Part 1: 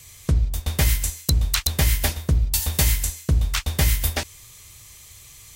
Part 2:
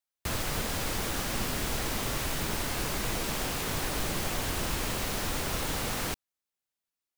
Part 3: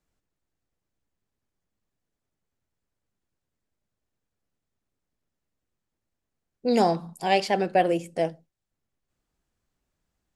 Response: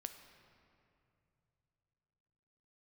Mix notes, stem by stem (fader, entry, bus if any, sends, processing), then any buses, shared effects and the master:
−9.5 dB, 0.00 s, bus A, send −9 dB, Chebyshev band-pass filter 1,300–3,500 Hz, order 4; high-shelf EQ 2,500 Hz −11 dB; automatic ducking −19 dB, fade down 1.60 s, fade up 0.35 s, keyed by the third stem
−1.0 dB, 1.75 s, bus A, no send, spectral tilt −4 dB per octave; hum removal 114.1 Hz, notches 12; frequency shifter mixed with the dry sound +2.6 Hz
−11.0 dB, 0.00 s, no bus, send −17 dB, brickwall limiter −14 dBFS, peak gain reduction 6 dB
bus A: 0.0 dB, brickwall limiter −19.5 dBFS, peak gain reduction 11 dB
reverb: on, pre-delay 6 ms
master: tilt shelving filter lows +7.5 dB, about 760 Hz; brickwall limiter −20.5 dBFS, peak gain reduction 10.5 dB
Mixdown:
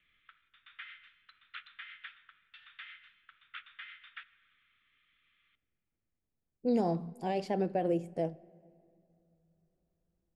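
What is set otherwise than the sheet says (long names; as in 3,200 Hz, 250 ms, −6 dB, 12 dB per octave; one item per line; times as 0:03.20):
stem 2: muted
reverb return +8.0 dB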